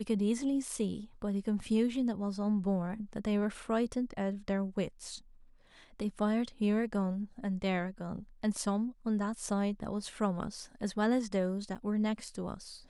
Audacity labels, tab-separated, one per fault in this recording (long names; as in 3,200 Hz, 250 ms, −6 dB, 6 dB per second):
11.750000	11.750000	drop-out 4.6 ms